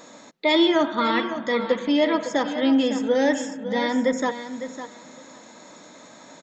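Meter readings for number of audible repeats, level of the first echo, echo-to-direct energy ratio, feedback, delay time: 2, -11.0 dB, -11.0 dB, 15%, 0.555 s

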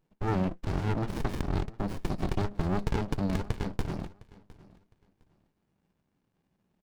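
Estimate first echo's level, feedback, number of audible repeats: -21.5 dB, 23%, 2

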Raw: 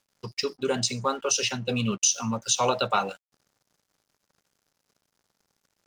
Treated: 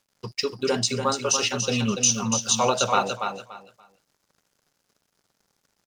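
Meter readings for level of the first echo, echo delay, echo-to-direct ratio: -6.5 dB, 0.288 s, -6.5 dB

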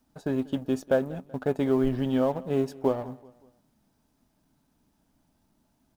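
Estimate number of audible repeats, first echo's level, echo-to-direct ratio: 2, -21.5 dB, -20.5 dB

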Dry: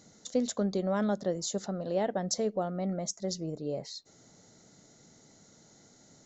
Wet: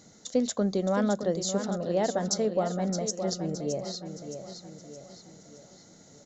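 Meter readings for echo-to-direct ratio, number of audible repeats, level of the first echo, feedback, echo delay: -7.5 dB, 5, -8.5 dB, 47%, 0.618 s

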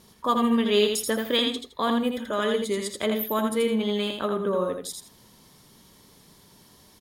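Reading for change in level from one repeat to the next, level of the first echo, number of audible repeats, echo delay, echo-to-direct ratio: -13.0 dB, -4.5 dB, 2, 82 ms, -4.5 dB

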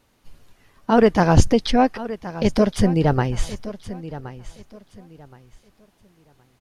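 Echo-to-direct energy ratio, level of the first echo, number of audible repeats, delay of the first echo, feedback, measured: -14.5 dB, -15.0 dB, 2, 1.071 s, 26%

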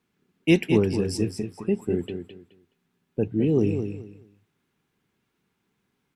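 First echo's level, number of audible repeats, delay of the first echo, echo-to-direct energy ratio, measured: -8.0 dB, 3, 0.212 s, -8.0 dB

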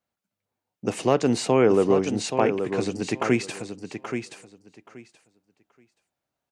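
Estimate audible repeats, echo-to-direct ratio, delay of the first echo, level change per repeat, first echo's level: 2, -8.0 dB, 0.827 s, -15.0 dB, -8.0 dB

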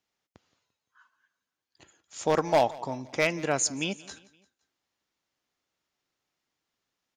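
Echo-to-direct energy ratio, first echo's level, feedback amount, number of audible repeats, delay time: -20.0 dB, -21.0 dB, 47%, 3, 0.172 s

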